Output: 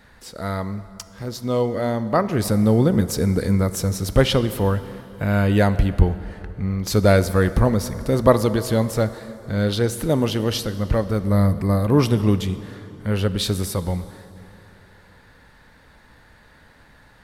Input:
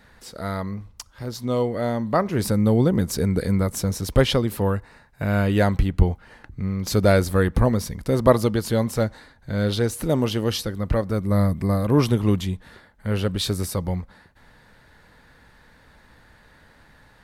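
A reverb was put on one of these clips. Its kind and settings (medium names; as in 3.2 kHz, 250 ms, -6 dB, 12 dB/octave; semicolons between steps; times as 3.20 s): plate-style reverb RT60 3.2 s, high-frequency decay 0.7×, DRR 12.5 dB; trim +1.5 dB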